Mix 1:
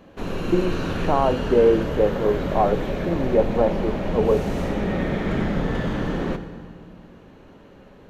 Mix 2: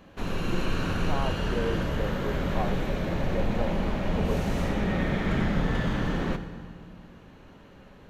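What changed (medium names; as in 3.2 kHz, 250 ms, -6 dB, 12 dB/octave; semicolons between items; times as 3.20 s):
speech -10.0 dB; master: add peaking EQ 410 Hz -6 dB 1.9 oct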